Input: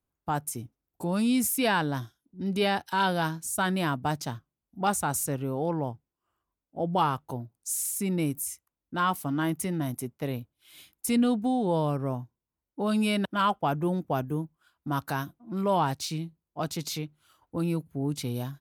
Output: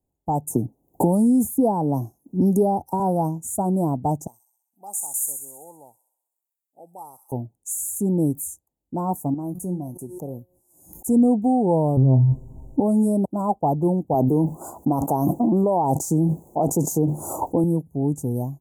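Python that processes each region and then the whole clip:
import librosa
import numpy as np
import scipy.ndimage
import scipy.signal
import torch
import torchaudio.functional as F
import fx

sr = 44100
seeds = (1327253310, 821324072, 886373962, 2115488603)

y = fx.chain(x, sr, fx.peak_eq(hz=7600.0, db=-7.5, octaves=0.48),
    fx.band_squash(depth_pct=100), at=(0.5, 3.0))
y = fx.chain(y, sr, fx.differentiator(),
    fx.echo_wet_highpass(ms=64, feedback_pct=62, hz=2400.0, wet_db=-4), at=(4.27, 7.32))
y = fx.chain(y, sr, fx.comb_fb(f0_hz=180.0, decay_s=0.28, harmonics='all', damping=0.0, mix_pct=70),
    fx.pre_swell(db_per_s=62.0), at=(9.34, 11.06))
y = fx.chain(y, sr, fx.riaa(side='playback'),
    fx.comb_fb(f0_hz=130.0, decay_s=0.15, harmonics='all', damping=0.0, mix_pct=90),
    fx.env_flatten(amount_pct=100), at=(11.97, 12.8))
y = fx.chain(y, sr, fx.highpass(hz=400.0, slope=6),
    fx.high_shelf(hz=2200.0, db=-7.0),
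    fx.env_flatten(amount_pct=100), at=(14.14, 17.64))
y = scipy.signal.sosfilt(scipy.signal.cheby1(4, 1.0, [860.0, 6900.0], 'bandstop', fs=sr, output='sos'), y)
y = fx.high_shelf(y, sr, hz=6600.0, db=-6.0)
y = y * 10.0 ** (7.5 / 20.0)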